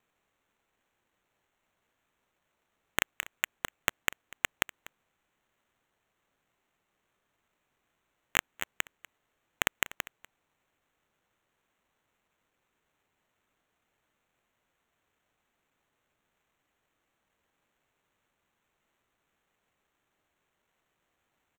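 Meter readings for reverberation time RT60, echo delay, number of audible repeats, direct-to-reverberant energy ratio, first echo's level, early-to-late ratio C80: no reverb, 244 ms, 1, no reverb, -19.5 dB, no reverb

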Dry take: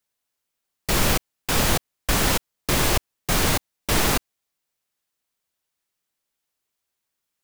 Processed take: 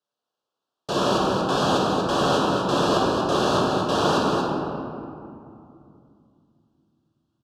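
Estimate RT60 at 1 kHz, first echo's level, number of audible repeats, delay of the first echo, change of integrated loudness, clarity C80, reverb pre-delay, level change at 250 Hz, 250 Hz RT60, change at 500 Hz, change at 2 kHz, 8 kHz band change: 2.5 s, -5.5 dB, 1, 236 ms, +0.5 dB, -1.0 dB, 6 ms, +5.5 dB, 3.5 s, +7.5 dB, -4.0 dB, -11.0 dB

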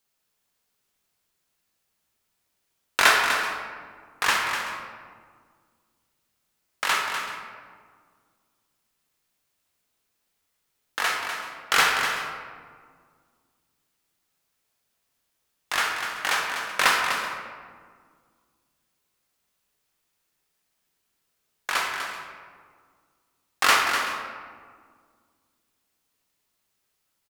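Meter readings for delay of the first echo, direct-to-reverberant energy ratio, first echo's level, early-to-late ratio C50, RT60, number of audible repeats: 248 ms, 0.0 dB, -8.5 dB, 2.0 dB, 1.8 s, 2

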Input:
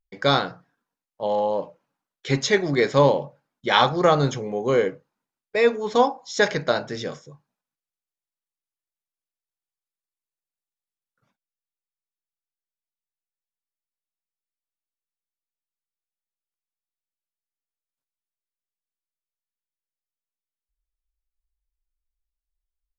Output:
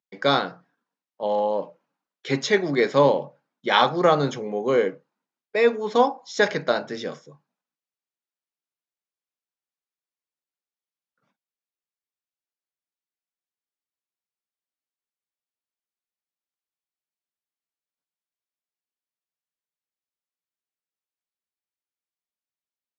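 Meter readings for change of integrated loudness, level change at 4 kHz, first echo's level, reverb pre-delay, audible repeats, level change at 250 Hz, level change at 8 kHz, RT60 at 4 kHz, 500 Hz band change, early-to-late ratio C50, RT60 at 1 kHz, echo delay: -0.5 dB, -1.5 dB, no echo, no reverb, no echo, -0.5 dB, no reading, no reverb, 0.0 dB, no reverb, no reverb, no echo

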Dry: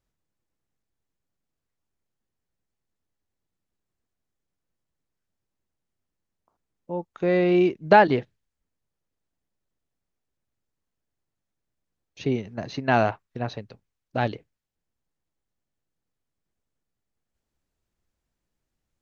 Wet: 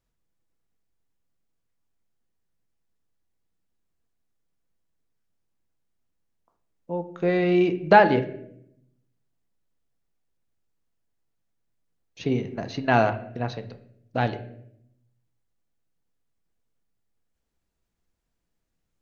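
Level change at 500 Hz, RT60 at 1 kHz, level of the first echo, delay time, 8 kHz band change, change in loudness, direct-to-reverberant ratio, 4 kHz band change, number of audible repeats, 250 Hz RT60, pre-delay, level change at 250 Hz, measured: 0.0 dB, 0.60 s, no echo, no echo, no reading, 0.0 dB, 8.0 dB, +0.5 dB, no echo, 1.1 s, 4 ms, 0.0 dB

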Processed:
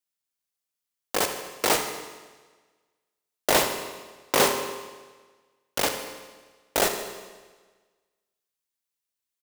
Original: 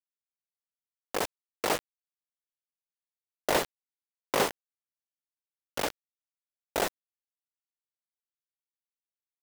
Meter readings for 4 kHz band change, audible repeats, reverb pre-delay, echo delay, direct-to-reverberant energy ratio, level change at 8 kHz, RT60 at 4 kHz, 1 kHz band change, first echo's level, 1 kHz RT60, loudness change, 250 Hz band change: +8.5 dB, 2, 23 ms, 78 ms, 5.0 dB, +10.0 dB, 1.3 s, +5.5 dB, -13.5 dB, 1.4 s, +6.5 dB, +5.0 dB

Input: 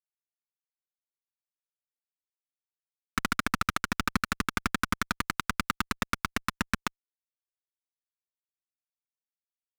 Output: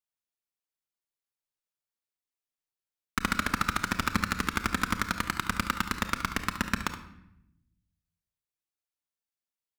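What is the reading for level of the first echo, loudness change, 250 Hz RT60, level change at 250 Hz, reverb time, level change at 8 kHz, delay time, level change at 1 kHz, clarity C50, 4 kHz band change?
-11.5 dB, +1.0 dB, 1.3 s, +1.0 dB, 0.75 s, +0.5 dB, 71 ms, +0.5 dB, 8.5 dB, +0.5 dB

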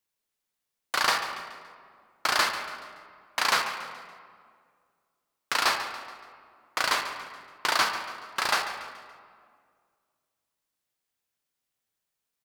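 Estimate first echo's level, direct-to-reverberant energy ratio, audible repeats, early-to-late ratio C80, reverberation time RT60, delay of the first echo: -13.5 dB, 5.5 dB, 3, 7.5 dB, 2.0 s, 142 ms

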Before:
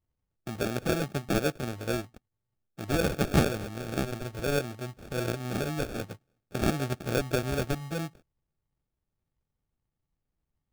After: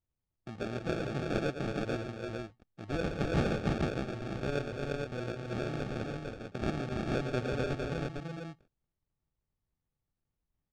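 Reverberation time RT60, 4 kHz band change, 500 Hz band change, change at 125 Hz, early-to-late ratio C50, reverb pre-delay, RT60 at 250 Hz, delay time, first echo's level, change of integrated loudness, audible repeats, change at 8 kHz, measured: no reverb, -6.5 dB, -3.5 dB, -3.5 dB, no reverb, no reverb, no reverb, 113 ms, -7.5 dB, -4.5 dB, 4, -14.0 dB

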